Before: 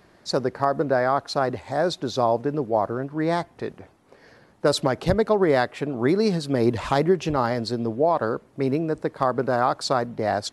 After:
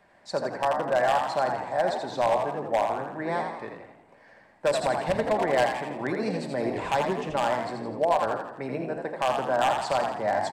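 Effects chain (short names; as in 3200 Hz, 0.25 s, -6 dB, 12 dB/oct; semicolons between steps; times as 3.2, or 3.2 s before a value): 7.01–7.69 expander -23 dBFS; three-band isolator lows -12 dB, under 440 Hz, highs -15 dB, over 2500 Hz; reverb RT60 0.80 s, pre-delay 5 ms, DRR 7 dB; wavefolder -14 dBFS; thirty-one-band EQ 400 Hz -10 dB, 1250 Hz -10 dB, 8000 Hz +10 dB; frequency-shifting echo 83 ms, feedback 48%, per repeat +62 Hz, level -5.5 dB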